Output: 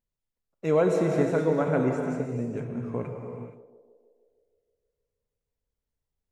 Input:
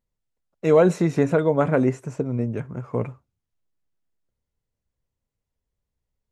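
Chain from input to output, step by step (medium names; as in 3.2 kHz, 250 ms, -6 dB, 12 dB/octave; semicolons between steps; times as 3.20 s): band-passed feedback delay 156 ms, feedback 67%, band-pass 490 Hz, level -12.5 dB; gated-style reverb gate 500 ms flat, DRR 2.5 dB; trim -6.5 dB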